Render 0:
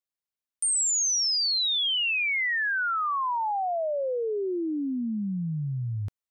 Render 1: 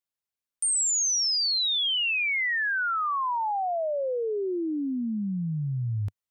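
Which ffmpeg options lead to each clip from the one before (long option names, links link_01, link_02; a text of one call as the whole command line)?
ffmpeg -i in.wav -af "equalizer=frequency=100:width_type=o:width=0.77:gain=2.5" out.wav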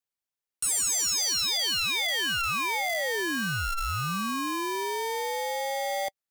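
ffmpeg -i in.wav -af "aeval=exprs='val(0)*sgn(sin(2*PI*680*n/s))':channel_layout=same,volume=-1.5dB" out.wav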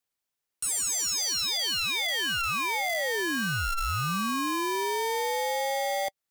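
ffmpeg -i in.wav -af "alimiter=level_in=6.5dB:limit=-24dB:level=0:latency=1:release=191,volume=-6.5dB,volume=5dB" out.wav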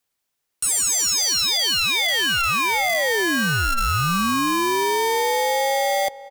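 ffmpeg -i in.wav -filter_complex "[0:a]asplit=2[link_01][link_02];[link_02]adelay=370,lowpass=frequency=1600:poles=1,volume=-17dB,asplit=2[link_03][link_04];[link_04]adelay=370,lowpass=frequency=1600:poles=1,volume=0.31,asplit=2[link_05][link_06];[link_06]adelay=370,lowpass=frequency=1600:poles=1,volume=0.31[link_07];[link_01][link_03][link_05][link_07]amix=inputs=4:normalize=0,volume=8dB" out.wav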